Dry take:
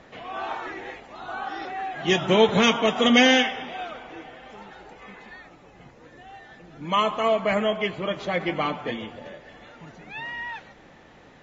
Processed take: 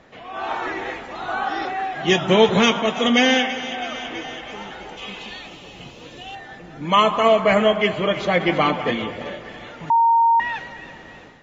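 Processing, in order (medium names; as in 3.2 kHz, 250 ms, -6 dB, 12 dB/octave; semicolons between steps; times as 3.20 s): two-band feedback delay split 1.8 kHz, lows 203 ms, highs 328 ms, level -13 dB; level rider gain up to 9 dB; 4.97–6.35 s: resonant high shelf 2.3 kHz +6.5 dB, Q 3; 9.90–10.40 s: bleep 923 Hz -11 dBFS; trim -1 dB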